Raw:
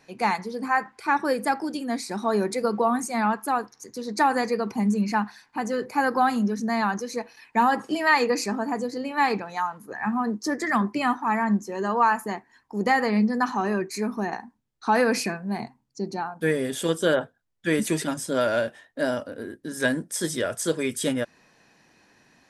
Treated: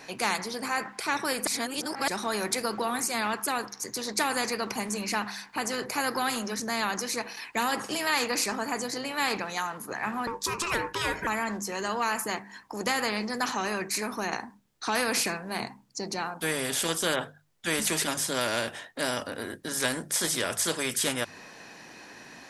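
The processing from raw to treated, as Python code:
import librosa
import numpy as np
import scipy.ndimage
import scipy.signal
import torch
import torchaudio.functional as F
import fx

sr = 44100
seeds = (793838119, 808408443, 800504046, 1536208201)

y = fx.ring_mod(x, sr, carrier_hz=690.0, at=(10.27, 11.27))
y = fx.edit(y, sr, fx.reverse_span(start_s=1.47, length_s=0.61), tone=tone)
y = fx.low_shelf(y, sr, hz=160.0, db=-8.0)
y = fx.hum_notches(y, sr, base_hz=50, count=4)
y = fx.spectral_comp(y, sr, ratio=2.0)
y = y * librosa.db_to_amplitude(-2.0)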